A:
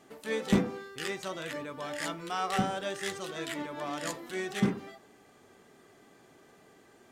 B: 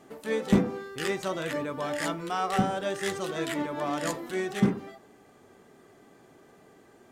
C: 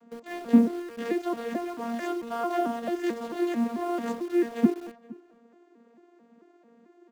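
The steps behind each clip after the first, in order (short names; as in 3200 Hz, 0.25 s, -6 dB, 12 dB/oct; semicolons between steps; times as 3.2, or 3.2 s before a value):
high shelf 2200 Hz -11.5 dB; in parallel at -1.5 dB: vocal rider 0.5 s; on the sum: high shelf 5000 Hz +8.5 dB
arpeggiated vocoder bare fifth, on A#3, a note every 0.221 s; in parallel at -8 dB: bit-crush 7-bit; on the sum: outdoor echo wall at 80 m, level -22 dB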